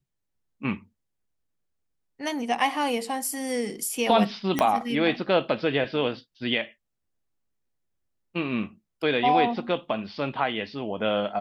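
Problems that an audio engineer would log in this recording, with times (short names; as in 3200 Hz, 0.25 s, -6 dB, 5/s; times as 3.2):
4.59 pop -8 dBFS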